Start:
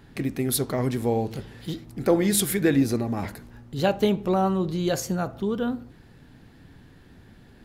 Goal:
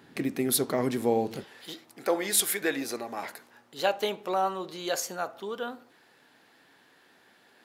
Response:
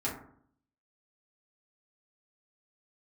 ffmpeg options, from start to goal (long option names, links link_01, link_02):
-af "asetnsamples=nb_out_samples=441:pad=0,asendcmd='1.44 highpass f 600',highpass=220"